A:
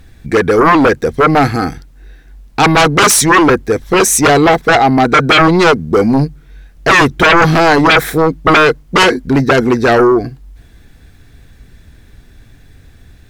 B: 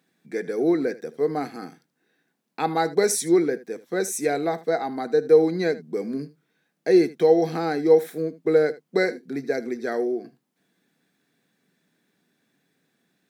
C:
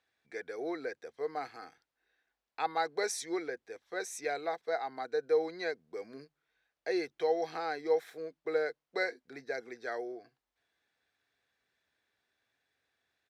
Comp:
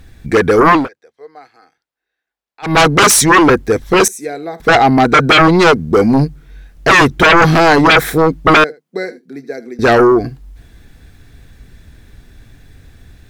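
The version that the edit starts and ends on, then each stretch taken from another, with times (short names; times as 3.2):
A
0.81–2.7 from C, crossfade 0.16 s
4.08–4.6 from B
8.64–9.79 from B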